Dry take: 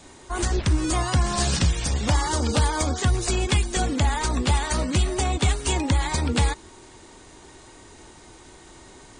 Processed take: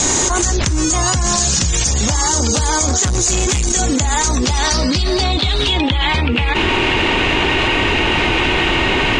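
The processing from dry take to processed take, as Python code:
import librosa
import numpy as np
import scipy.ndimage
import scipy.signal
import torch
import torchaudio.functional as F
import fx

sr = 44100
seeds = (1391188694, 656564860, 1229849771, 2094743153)

y = fx.leveller(x, sr, passes=3, at=(2.88, 3.69))
y = fx.filter_sweep_lowpass(y, sr, from_hz=6700.0, to_hz=2700.0, start_s=4.24, end_s=6.32, q=5.5)
y = fx.env_flatten(y, sr, amount_pct=100)
y = F.gain(torch.from_numpy(y), -5.0).numpy()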